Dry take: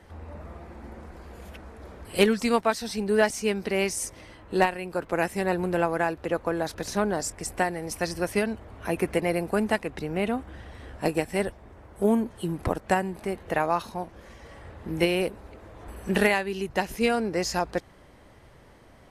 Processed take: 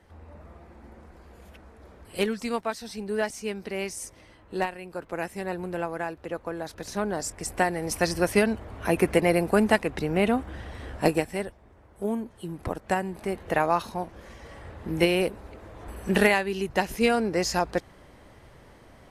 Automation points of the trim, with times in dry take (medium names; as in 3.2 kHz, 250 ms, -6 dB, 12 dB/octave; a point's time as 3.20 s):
6.65 s -6 dB
7.94 s +4 dB
11.07 s +4 dB
11.48 s -6.5 dB
12.42 s -6.5 dB
13.42 s +1.5 dB